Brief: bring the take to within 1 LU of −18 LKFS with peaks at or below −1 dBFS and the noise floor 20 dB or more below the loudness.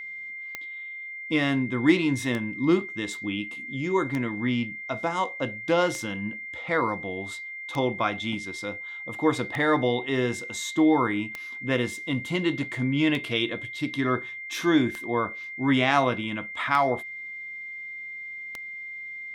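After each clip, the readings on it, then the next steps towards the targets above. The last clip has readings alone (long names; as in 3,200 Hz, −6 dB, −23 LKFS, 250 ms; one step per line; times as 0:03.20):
number of clicks 11; interfering tone 2,100 Hz; level of the tone −35 dBFS; integrated loudness −27.0 LKFS; sample peak −7.0 dBFS; target loudness −18.0 LKFS
→ click removal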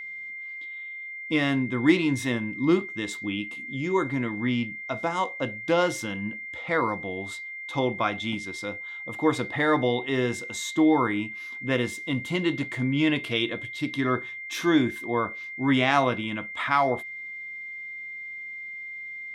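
number of clicks 0; interfering tone 2,100 Hz; level of the tone −35 dBFS
→ notch filter 2,100 Hz, Q 30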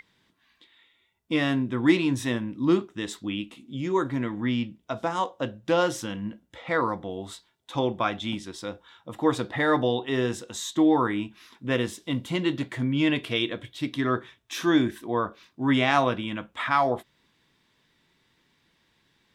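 interfering tone none found; integrated loudness −27.0 LKFS; sample peak −8.0 dBFS; target loudness −18.0 LKFS
→ level +9 dB
brickwall limiter −1 dBFS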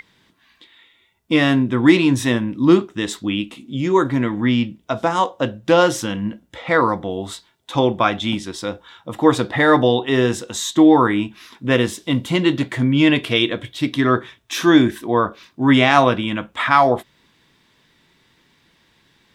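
integrated loudness −18.0 LKFS; sample peak −1.0 dBFS; background noise floor −60 dBFS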